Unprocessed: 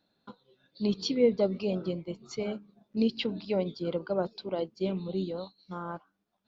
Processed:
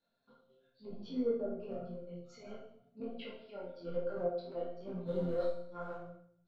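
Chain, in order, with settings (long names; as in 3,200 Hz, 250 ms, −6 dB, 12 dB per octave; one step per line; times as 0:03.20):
0:03.00–0:03.74: three-way crossover with the lows and the highs turned down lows −13 dB, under 290 Hz, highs −13 dB, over 3,900 Hz
treble cut that deepens with the level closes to 730 Hz, closed at −24 dBFS
0:01.85–0:02.43: downward compressor 4 to 1, threshold −40 dBFS, peak gain reduction 11 dB
transient designer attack −12 dB, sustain −8 dB
0:05.06–0:05.58: leveller curve on the samples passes 2
resonators tuned to a chord F2 sus4, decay 0.6 s
hollow resonant body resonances 540/1,400 Hz, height 10 dB, ringing for 50 ms
convolution reverb RT60 0.65 s, pre-delay 4 ms, DRR 3.5 dB
micro pitch shift up and down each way 34 cents
level +11 dB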